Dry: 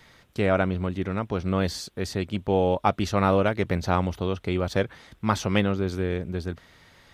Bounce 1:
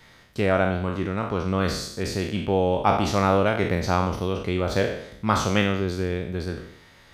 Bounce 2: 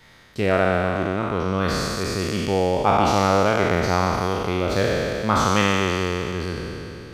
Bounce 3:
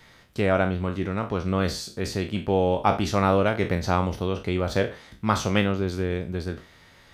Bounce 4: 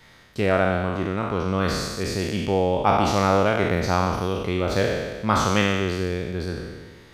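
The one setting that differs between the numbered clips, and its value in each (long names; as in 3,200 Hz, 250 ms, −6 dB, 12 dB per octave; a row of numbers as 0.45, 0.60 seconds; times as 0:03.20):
peak hold with a decay on every bin, RT60: 0.69, 3.1, 0.32, 1.48 seconds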